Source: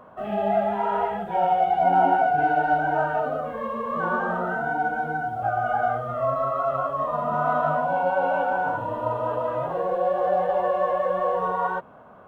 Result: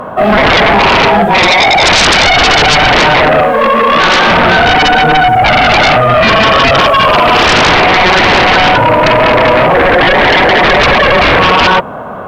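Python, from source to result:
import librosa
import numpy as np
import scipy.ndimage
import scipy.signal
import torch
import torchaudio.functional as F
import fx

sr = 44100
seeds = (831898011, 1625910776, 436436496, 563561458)

y = fx.bass_treble(x, sr, bass_db=-12, treble_db=6, at=(6.79, 7.47))
y = fx.fold_sine(y, sr, drive_db=17, ceiling_db=-8.5)
y = fx.peak_eq(y, sr, hz=79.0, db=-9.5, octaves=2.5, at=(3.43, 4.28))
y = F.gain(torch.from_numpy(y), 5.0).numpy()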